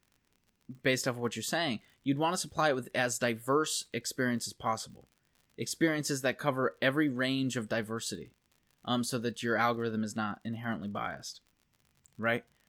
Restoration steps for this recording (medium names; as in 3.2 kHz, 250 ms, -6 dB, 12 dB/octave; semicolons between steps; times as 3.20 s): de-click; interpolate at 12.07 s, 8.3 ms